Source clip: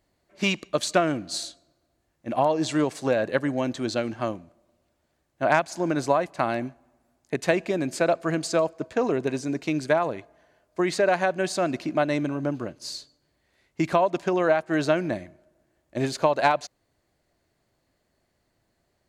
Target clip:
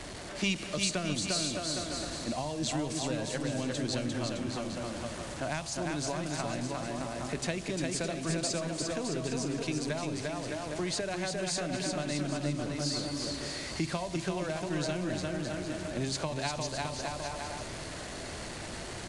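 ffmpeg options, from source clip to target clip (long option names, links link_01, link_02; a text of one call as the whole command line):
ffmpeg -i in.wav -filter_complex "[0:a]aeval=exprs='val(0)+0.5*0.0224*sgn(val(0))':channel_layout=same,bandreject=frequency=68.36:width_type=h:width=4,bandreject=frequency=136.72:width_type=h:width=4,bandreject=frequency=205.08:width_type=h:width=4,bandreject=frequency=273.44:width_type=h:width=4,bandreject=frequency=341.8:width_type=h:width=4,bandreject=frequency=410.16:width_type=h:width=4,bandreject=frequency=478.52:width_type=h:width=4,bandreject=frequency=546.88:width_type=h:width=4,bandreject=frequency=615.24:width_type=h:width=4,bandreject=frequency=683.6:width_type=h:width=4,bandreject=frequency=751.96:width_type=h:width=4,bandreject=frequency=820.32:width_type=h:width=4,bandreject=frequency=888.68:width_type=h:width=4,bandreject=frequency=957.04:width_type=h:width=4,bandreject=frequency=1025.4:width_type=h:width=4,bandreject=frequency=1093.76:width_type=h:width=4,bandreject=frequency=1162.12:width_type=h:width=4,bandreject=frequency=1230.48:width_type=h:width=4,bandreject=frequency=1298.84:width_type=h:width=4,asplit=2[link_01][link_02];[link_02]aecho=0:1:350|612.5|809.4|957|1068:0.631|0.398|0.251|0.158|0.1[link_03];[link_01][link_03]amix=inputs=2:normalize=0,acrossover=split=200|3000[link_04][link_05][link_06];[link_05]acompressor=threshold=-32dB:ratio=6[link_07];[link_04][link_07][link_06]amix=inputs=3:normalize=0,aresample=22050,aresample=44100,volume=-3dB" out.wav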